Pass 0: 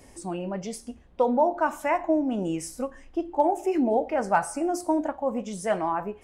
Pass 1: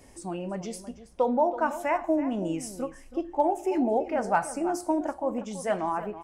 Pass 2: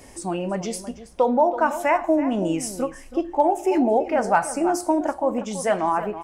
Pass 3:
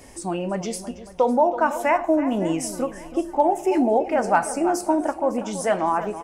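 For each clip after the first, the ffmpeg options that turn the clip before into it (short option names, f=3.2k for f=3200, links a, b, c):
-filter_complex "[0:a]asplit=2[a][b];[b]adelay=326.5,volume=-13dB,highshelf=f=4k:g=-7.35[c];[a][c]amix=inputs=2:normalize=0,volume=-2dB"
-filter_complex "[0:a]lowshelf=f=370:g=-3.5,asplit=2[a][b];[b]alimiter=limit=-22.5dB:level=0:latency=1:release=333,volume=-1dB[c];[a][c]amix=inputs=2:normalize=0,volume=3.5dB"
-af "aecho=1:1:555|1110|1665:0.112|0.0494|0.0217"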